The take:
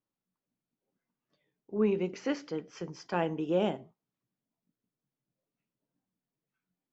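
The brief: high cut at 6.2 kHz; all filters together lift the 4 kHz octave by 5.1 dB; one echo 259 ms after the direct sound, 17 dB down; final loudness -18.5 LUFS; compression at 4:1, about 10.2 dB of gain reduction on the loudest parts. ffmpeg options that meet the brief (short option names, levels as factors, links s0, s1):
-af "lowpass=6200,equalizer=f=4000:t=o:g=8.5,acompressor=threshold=0.0178:ratio=4,aecho=1:1:259:0.141,volume=11.9"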